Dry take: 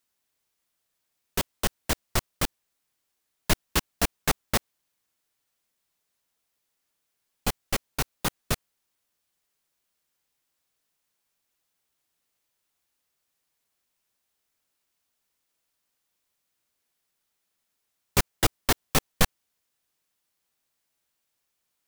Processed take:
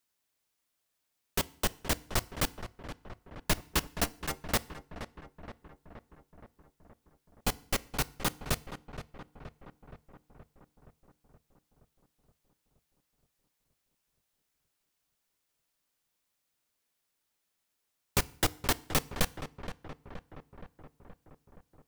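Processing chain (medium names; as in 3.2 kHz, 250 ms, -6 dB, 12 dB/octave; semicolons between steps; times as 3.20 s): compression, threshold -20 dBFS, peak gain reduction 6.5 dB; 4.04–4.45 s: inharmonic resonator 69 Hz, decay 0.21 s, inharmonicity 0.008; on a send: filtered feedback delay 472 ms, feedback 66%, low-pass 2.3 kHz, level -11 dB; on the sum: FDN reverb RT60 0.55 s, low-frequency decay 1.25×, high-frequency decay 0.95×, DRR 18 dB; trim -2.5 dB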